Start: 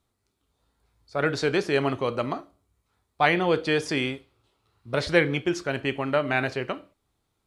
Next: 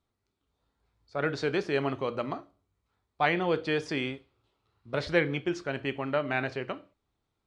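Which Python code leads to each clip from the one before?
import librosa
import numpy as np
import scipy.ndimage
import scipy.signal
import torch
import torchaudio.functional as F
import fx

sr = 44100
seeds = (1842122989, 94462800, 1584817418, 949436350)

y = fx.air_absorb(x, sr, metres=75.0)
y = fx.hum_notches(y, sr, base_hz=60, count=2)
y = y * 10.0 ** (-4.5 / 20.0)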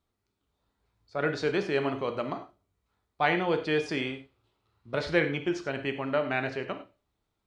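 y = fx.rev_gated(x, sr, seeds[0], gate_ms=120, shape='flat', drr_db=8.0)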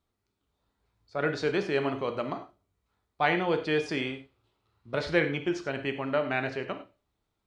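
y = x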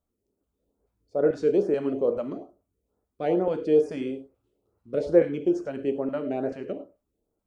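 y = fx.filter_lfo_notch(x, sr, shape='saw_up', hz=2.3, low_hz=300.0, high_hz=4200.0, q=0.78)
y = fx.graphic_eq_10(y, sr, hz=(125, 250, 500, 1000, 2000, 4000), db=(-6, 5, 11, -6, -9, -12))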